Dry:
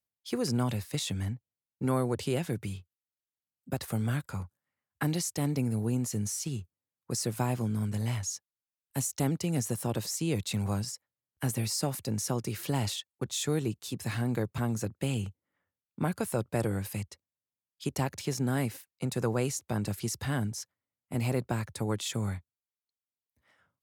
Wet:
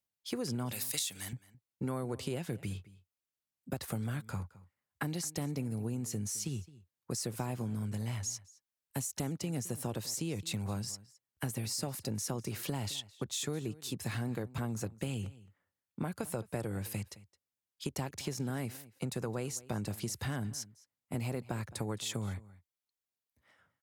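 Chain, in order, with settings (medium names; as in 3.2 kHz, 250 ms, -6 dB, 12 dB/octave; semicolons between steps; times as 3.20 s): 0.72–1.33 s: tilt EQ +4.5 dB/octave; compression, threshold -33 dBFS, peak gain reduction 12 dB; echo from a far wall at 37 m, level -19 dB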